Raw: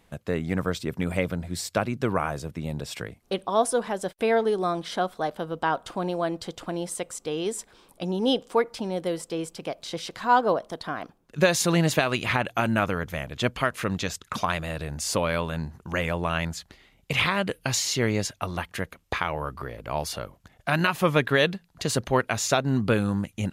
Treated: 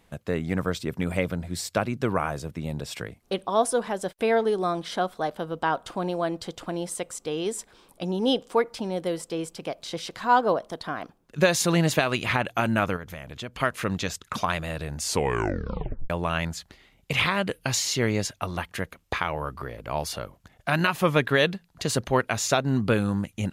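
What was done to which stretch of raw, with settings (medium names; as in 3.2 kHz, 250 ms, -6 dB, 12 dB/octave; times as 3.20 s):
12.96–13.60 s: compression 3:1, threshold -35 dBFS
15.05 s: tape stop 1.05 s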